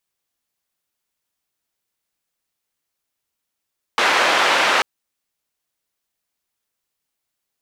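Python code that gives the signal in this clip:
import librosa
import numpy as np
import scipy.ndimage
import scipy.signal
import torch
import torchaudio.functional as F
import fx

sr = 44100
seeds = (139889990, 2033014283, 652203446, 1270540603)

y = fx.band_noise(sr, seeds[0], length_s=0.84, low_hz=480.0, high_hz=2200.0, level_db=-16.5)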